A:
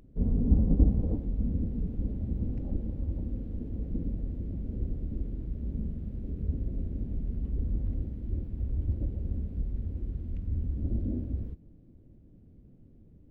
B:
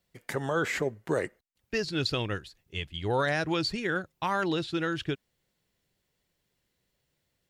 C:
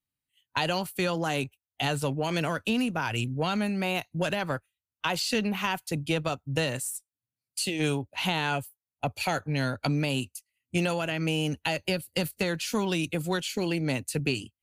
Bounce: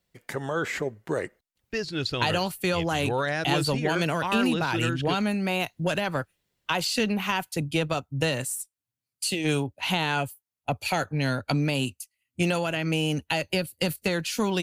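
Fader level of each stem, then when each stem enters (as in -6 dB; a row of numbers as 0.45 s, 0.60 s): mute, 0.0 dB, +2.0 dB; mute, 0.00 s, 1.65 s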